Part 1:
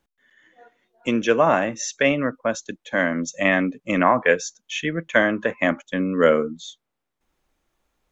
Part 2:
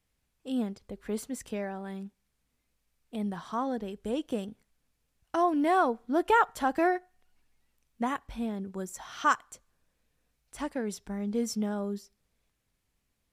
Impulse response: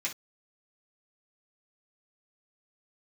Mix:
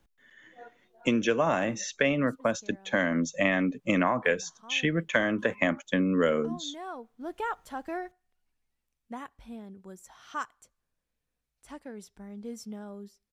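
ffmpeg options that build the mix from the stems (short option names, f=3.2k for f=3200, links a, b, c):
-filter_complex "[0:a]lowshelf=f=150:g=8,acrossover=split=99|3900[a][b][c];[a]acompressor=threshold=-56dB:ratio=4[d];[b]acompressor=threshold=-25dB:ratio=4[e];[c]acompressor=threshold=-42dB:ratio=4[f];[d][e][f]amix=inputs=3:normalize=0,volume=1.5dB,asplit=2[g][h];[1:a]adelay=1100,volume=-9.5dB[i];[h]apad=whole_len=636091[j];[i][j]sidechaincompress=threshold=-34dB:ratio=4:attack=38:release=1120[k];[g][k]amix=inputs=2:normalize=0"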